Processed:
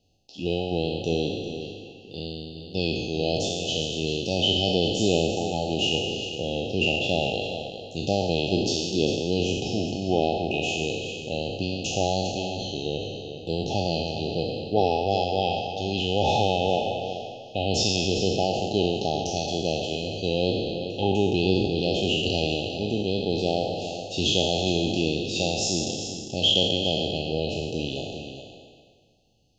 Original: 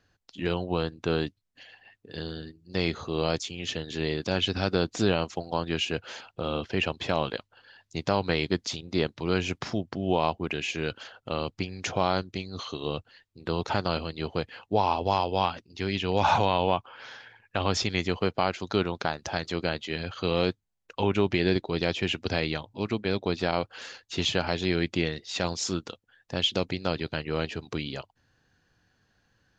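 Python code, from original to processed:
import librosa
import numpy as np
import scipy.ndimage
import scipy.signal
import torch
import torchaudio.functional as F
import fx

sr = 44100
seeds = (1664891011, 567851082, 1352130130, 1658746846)

y = fx.spec_trails(x, sr, decay_s=1.7)
y = fx.brickwall_bandstop(y, sr, low_hz=850.0, high_hz=2500.0)
y = y + 10.0 ** (-10.0 / 20.0) * np.pad(y, (int(400 * sr / 1000.0), 0))[:len(y)]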